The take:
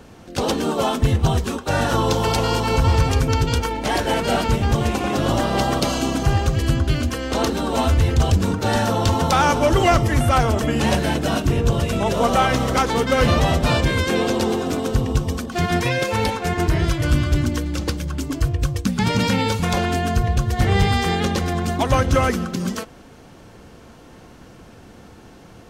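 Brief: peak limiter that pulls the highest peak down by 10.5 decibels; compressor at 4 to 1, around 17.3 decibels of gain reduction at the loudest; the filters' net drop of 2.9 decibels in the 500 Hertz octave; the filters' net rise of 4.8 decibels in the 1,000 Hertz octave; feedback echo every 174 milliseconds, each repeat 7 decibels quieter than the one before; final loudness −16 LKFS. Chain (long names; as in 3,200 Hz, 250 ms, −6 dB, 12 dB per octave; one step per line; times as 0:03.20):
parametric band 500 Hz −6.5 dB
parametric band 1,000 Hz +8.5 dB
downward compressor 4 to 1, threshold −33 dBFS
brickwall limiter −28 dBFS
repeating echo 174 ms, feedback 45%, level −7 dB
level +20.5 dB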